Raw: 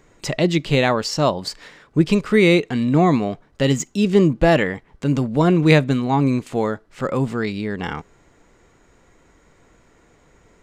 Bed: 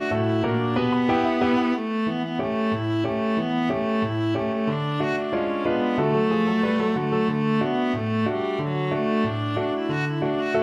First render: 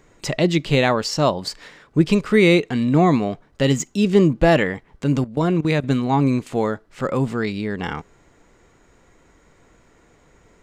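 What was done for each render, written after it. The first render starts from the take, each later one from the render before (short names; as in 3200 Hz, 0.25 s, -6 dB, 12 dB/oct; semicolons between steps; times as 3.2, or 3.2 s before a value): 5.24–5.84 level quantiser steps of 18 dB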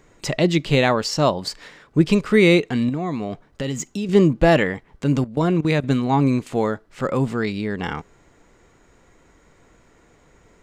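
2.89–4.09 compressor 5:1, threshold -22 dBFS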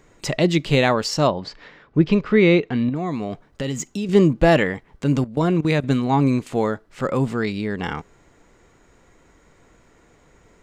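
1.27–2.96 air absorption 190 m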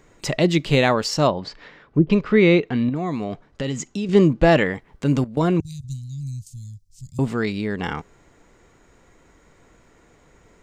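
1.47–2.1 treble ducked by the level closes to 480 Hz, closed at -14 dBFS; 3.24–4.72 LPF 7400 Hz; 5.6–7.19 elliptic band-stop 110–5600 Hz, stop band 60 dB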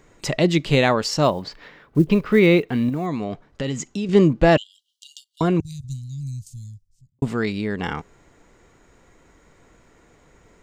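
1.23–3.07 block floating point 7-bit; 4.57–5.41 brick-wall FIR high-pass 2800 Hz; 6.57–7.22 studio fade out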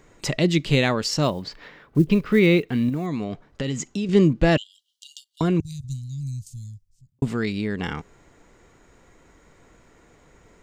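dynamic EQ 810 Hz, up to -7 dB, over -33 dBFS, Q 0.76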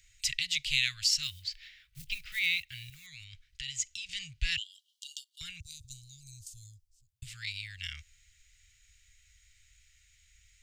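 inverse Chebyshev band-stop 220–890 Hz, stop band 60 dB; low shelf 150 Hz -7 dB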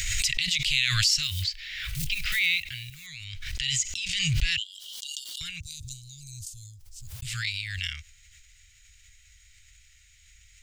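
in parallel at +0.5 dB: limiter -22.5 dBFS, peak gain reduction 10.5 dB; on the sum: backwards sustainer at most 29 dB/s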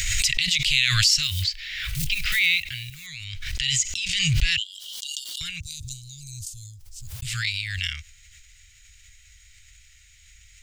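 gain +4 dB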